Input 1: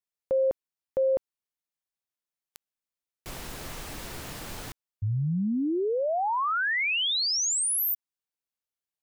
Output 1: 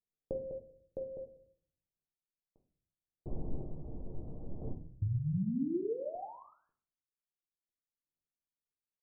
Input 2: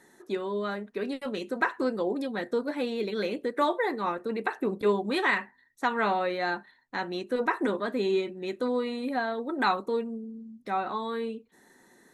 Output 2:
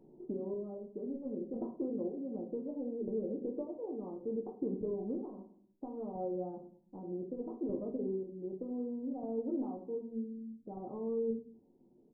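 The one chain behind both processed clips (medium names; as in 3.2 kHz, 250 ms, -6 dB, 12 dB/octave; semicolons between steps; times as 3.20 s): on a send: feedback delay 97 ms, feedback 40%, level -24 dB; on the sum: square tremolo 0.65 Hz, depth 60%, duty 35%; compression 4:1, threshold -37 dBFS; Gaussian low-pass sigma 16 samples; simulated room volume 61 m³, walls mixed, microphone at 0.49 m; trim +4 dB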